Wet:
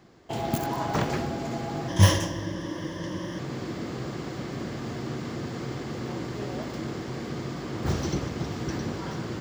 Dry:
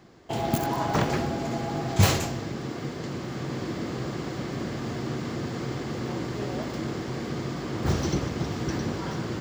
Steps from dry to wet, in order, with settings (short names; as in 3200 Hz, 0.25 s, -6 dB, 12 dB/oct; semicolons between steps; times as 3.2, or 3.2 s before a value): 1.88–3.39 ripple EQ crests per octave 1.2, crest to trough 14 dB; gain -2 dB